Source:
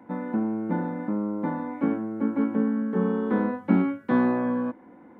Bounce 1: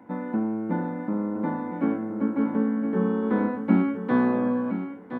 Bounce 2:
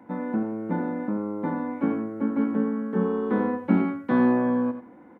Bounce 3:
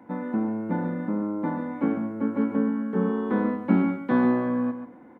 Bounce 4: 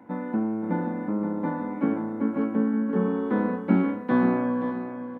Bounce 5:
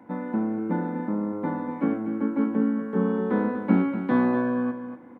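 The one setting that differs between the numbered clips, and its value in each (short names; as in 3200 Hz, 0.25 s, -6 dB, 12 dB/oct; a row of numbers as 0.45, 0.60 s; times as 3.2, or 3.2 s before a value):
feedback echo, time: 1017, 89, 138, 524, 243 ms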